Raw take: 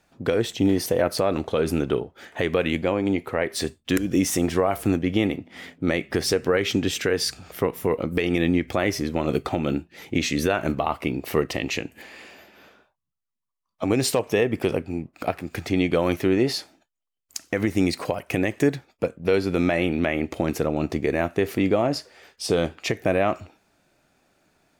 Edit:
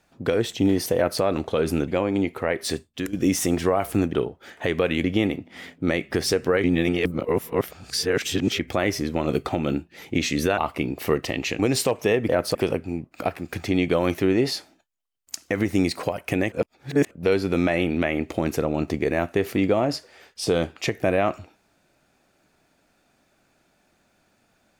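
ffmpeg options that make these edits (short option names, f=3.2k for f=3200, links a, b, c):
-filter_complex "[0:a]asplit=13[a][b][c][d][e][f][g][h][i][j][k][l][m];[a]atrim=end=1.882[n];[b]atrim=start=2.788:end=4.04,asetpts=PTS-STARTPTS,afade=t=out:st=0.842:d=0.41:silence=0.281838[o];[c]atrim=start=4.04:end=5.042,asetpts=PTS-STARTPTS,afade=t=in:d=0.004:c=hsin:silence=0.281838[p];[d]atrim=start=1.878:end=2.792[q];[e]atrim=start=5.038:end=6.642[r];[f]atrim=start=6.638:end=8.592,asetpts=PTS-STARTPTS,areverse[s];[g]atrim=start=8.588:end=10.582[t];[h]atrim=start=10.838:end=11.852[u];[i]atrim=start=13.868:end=14.572[v];[j]atrim=start=0.958:end=1.222[w];[k]atrim=start=14.568:end=18.542[x];[l]atrim=start=18.538:end=19.132,asetpts=PTS-STARTPTS,areverse[y];[m]atrim=start=19.128[z];[o][p]concat=n=2:v=0:a=1[aa];[n][aa]acrossfade=d=0.004:c1=hsin:c2=hsin[ab];[ab][q]acrossfade=d=0.004:c1=hsin:c2=hsin[ac];[ac][r]acrossfade=d=0.004:c1=hsin:c2=hsin[ad];[ad][s]acrossfade=d=0.004:c1=hsin:c2=hsin[ae];[ae][t]acrossfade=d=0.004:c1=hsin:c2=hsin[af];[af][u]acrossfade=d=0.004:c1=hsin:c2=hsin[ag];[ag][v]acrossfade=d=0.004:c1=hsin:c2=hsin[ah];[ah][w]acrossfade=d=0.004:c1=hsin:c2=hsin[ai];[ai][x]acrossfade=d=0.004:c1=hsin:c2=hsin[aj];[aj][y]acrossfade=d=0.004:c1=hsin:c2=hsin[ak];[ak][z]acrossfade=d=0.004:c1=hsin:c2=hsin"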